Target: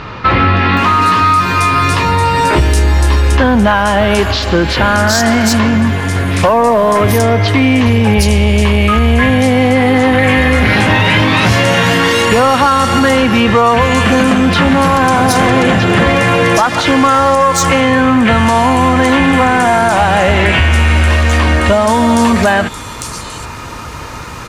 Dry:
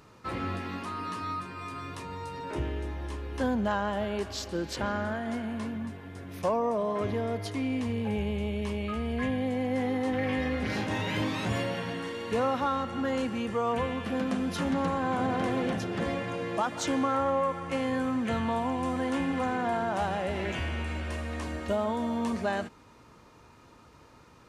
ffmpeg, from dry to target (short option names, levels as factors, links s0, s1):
-filter_complex "[0:a]equalizer=f=330:t=o:w=2.8:g=-8.5,acompressor=threshold=0.0126:ratio=6,asoftclip=type=tanh:threshold=0.0168,acrossover=split=4100[s0][s1];[s1]adelay=770[s2];[s0][s2]amix=inputs=2:normalize=0,alimiter=level_in=53.1:limit=0.891:release=50:level=0:latency=1,volume=0.891"